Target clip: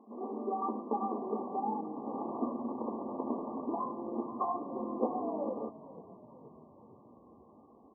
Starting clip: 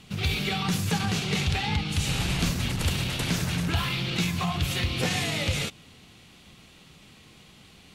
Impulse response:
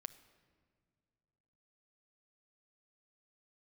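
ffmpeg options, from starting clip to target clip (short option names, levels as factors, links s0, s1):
-filter_complex "[0:a]afftfilt=real='re*between(b*sr/4096,210,1200)':imag='im*between(b*sr/4096,210,1200)':win_size=4096:overlap=0.75,asplit=6[s0][s1][s2][s3][s4][s5];[s1]adelay=474,afreqshift=-32,volume=0.133[s6];[s2]adelay=948,afreqshift=-64,volume=0.0785[s7];[s3]adelay=1422,afreqshift=-96,volume=0.0462[s8];[s4]adelay=1896,afreqshift=-128,volume=0.0275[s9];[s5]adelay=2370,afreqshift=-160,volume=0.0162[s10];[s0][s6][s7][s8][s9][s10]amix=inputs=6:normalize=0"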